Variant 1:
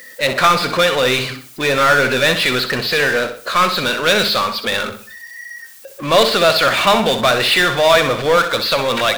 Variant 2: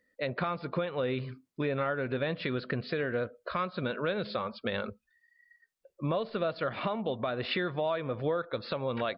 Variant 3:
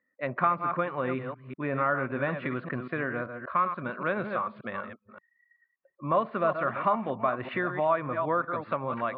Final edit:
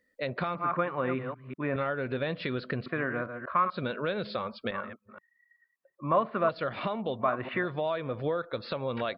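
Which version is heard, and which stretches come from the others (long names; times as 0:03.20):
2
0:00.55–0:01.76: punch in from 3
0:02.86–0:03.70: punch in from 3
0:04.71–0:06.49: punch in from 3
0:07.23–0:07.65: punch in from 3, crossfade 0.06 s
not used: 1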